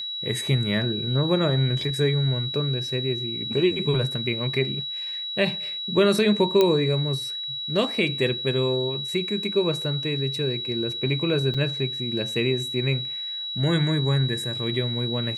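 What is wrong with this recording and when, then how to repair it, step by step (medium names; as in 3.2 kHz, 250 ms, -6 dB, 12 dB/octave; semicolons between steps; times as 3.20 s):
whine 3.9 kHz -29 dBFS
6.61 s: pop -7 dBFS
11.54 s: dropout 5 ms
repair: de-click; band-stop 3.9 kHz, Q 30; interpolate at 11.54 s, 5 ms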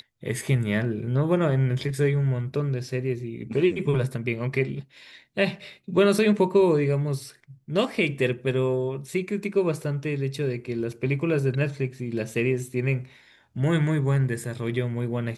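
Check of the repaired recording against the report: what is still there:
nothing left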